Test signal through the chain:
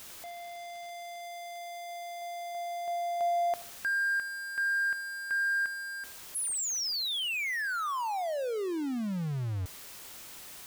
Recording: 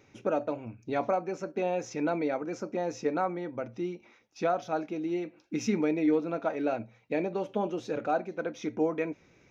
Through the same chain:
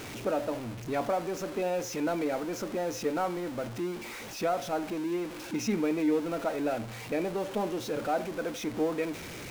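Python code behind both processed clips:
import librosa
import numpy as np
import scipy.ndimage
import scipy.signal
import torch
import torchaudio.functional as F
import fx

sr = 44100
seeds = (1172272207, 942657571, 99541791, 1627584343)

y = x + 0.5 * 10.0 ** (-33.5 / 20.0) * np.sign(x)
y = fx.echo_wet_bandpass(y, sr, ms=80, feedback_pct=36, hz=900.0, wet_db=-17)
y = y * librosa.db_to_amplitude(-2.5)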